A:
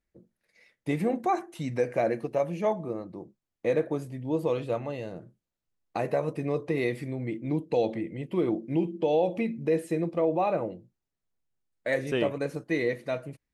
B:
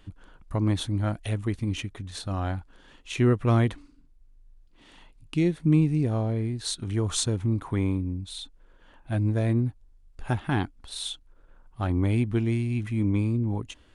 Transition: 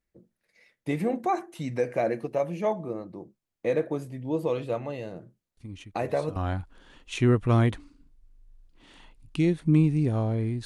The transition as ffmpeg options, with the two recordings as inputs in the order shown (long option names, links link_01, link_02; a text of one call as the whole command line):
ffmpeg -i cue0.wav -i cue1.wav -filter_complex "[1:a]asplit=2[link_01][link_02];[0:a]apad=whole_dur=10.65,atrim=end=10.65,atrim=end=6.362[link_03];[link_02]atrim=start=2.338:end=6.63[link_04];[link_01]atrim=start=1.55:end=2.34,asetpts=PTS-STARTPTS,volume=-12.5dB,afade=type=in:duration=0.004:curve=hsin,afade=type=out:start_time=0.786:duration=0.004:curve=hsin,adelay=245637S[link_05];[link_03][link_04]acrossfade=duration=0.004:curve1=hsin:curve2=hsin[link_06];[link_06][link_05]amix=inputs=2:normalize=0" out.wav